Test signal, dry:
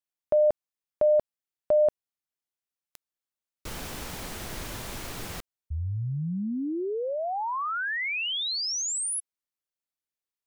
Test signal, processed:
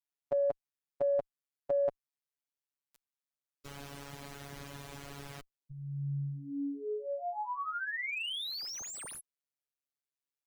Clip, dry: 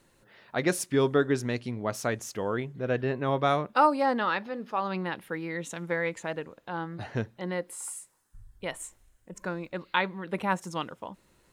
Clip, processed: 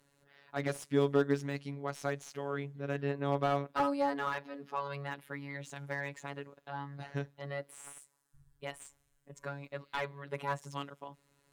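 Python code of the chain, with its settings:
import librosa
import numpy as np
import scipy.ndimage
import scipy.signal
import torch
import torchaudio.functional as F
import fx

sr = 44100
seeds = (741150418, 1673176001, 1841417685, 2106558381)

y = fx.robotise(x, sr, hz=141.0)
y = fx.cheby_harmonics(y, sr, harmonics=(2, 7), levels_db=(-38, -39), full_scale_db=-8.5)
y = fx.slew_limit(y, sr, full_power_hz=80.0)
y = y * librosa.db_to_amplitude(-3.5)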